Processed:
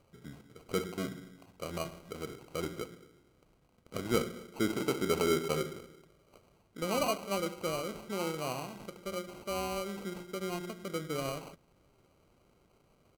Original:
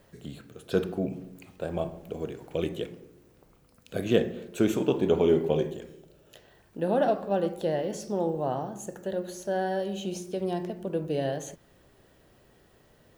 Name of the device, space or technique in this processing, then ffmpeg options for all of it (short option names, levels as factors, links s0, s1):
crushed at another speed: -af "asetrate=55125,aresample=44100,acrusher=samples=20:mix=1:aa=0.000001,asetrate=35280,aresample=44100,volume=0.447"